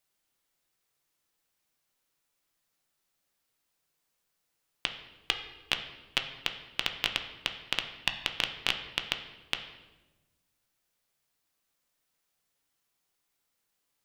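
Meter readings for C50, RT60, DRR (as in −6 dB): 9.5 dB, 1.1 s, 5.0 dB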